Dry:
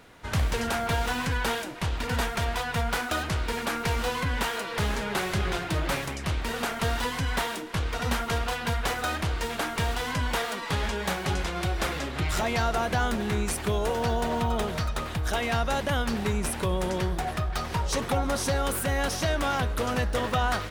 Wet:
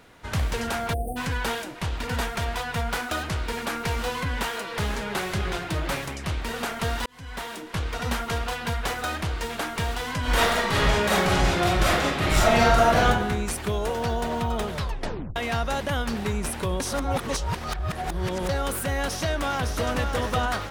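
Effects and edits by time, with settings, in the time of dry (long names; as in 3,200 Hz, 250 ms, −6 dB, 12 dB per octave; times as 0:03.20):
0:00.93–0:01.17: time-frequency box erased 790–8,400 Hz
0:07.06–0:07.75: fade in
0:10.20–0:13.08: thrown reverb, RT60 0.84 s, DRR −7.5 dB
0:14.74: tape stop 0.62 s
0:16.80–0:18.49: reverse
0:19.07–0:19.89: delay throw 560 ms, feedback 40%, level −5.5 dB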